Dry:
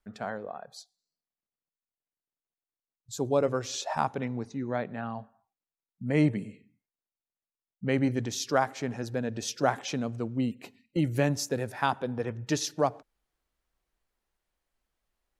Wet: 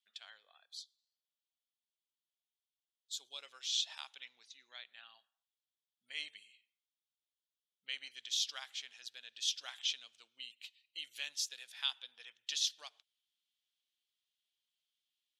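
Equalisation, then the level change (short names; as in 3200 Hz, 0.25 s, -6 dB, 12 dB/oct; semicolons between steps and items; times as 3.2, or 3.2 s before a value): band-pass 3300 Hz, Q 4.9; differentiator; +14.5 dB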